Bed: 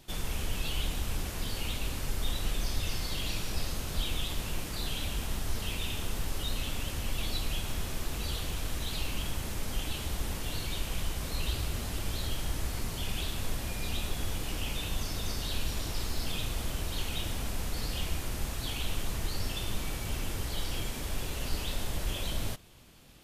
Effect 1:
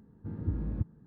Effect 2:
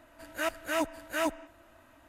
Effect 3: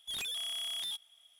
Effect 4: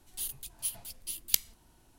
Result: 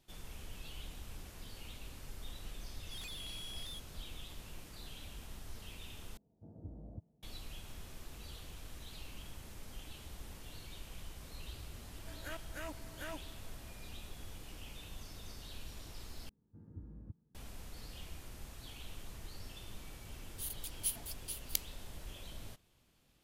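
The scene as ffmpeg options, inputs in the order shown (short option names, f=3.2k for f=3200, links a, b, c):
-filter_complex "[1:a]asplit=2[a][b];[0:a]volume=-15dB[c];[a]lowpass=f=670:t=q:w=8.1[d];[2:a]acompressor=threshold=-32dB:ratio=5:attack=0.11:release=593:knee=1:detection=peak[e];[b]lowpass=f=1.3k:p=1[f];[4:a]dynaudnorm=f=170:g=3:m=11.5dB[g];[c]asplit=3[h][i][j];[h]atrim=end=6.174[k];[d]atrim=end=1.06,asetpts=PTS-STARTPTS,volume=-17dB[l];[i]atrim=start=7.226:end=16.294[m];[f]atrim=end=1.06,asetpts=PTS-STARTPTS,volume=-17.5dB[n];[j]atrim=start=17.346[o];[3:a]atrim=end=1.39,asetpts=PTS-STARTPTS,volume=-10.5dB,afade=t=in:d=0.004:c=hsin,afade=t=out:st=1.386:d=0.004:c=hsin,adelay=2830[p];[e]atrim=end=2.08,asetpts=PTS-STARTPTS,volume=-6.5dB,afade=t=in:d=0.004:c=hsin,afade=t=out:st=2.076:d=0.004:c=hsin,adelay=11880[q];[g]atrim=end=1.98,asetpts=PTS-STARTPTS,volume=-13dB,afade=t=in:d=0.004:c=hsin,afade=t=out:st=1.976:d=0.004:c=hsin,adelay=20210[r];[k][l]acrossfade=d=0.004:c1=hsin:c2=hsin[s];[s][m]acrossfade=d=0.004:c1=hsin:c2=hsin[t];[t][n]acrossfade=d=0.004:c1=hsin:c2=hsin[u];[u][o]acrossfade=d=0.004:c1=hsin:c2=hsin[v];[v][p][q][r]amix=inputs=4:normalize=0"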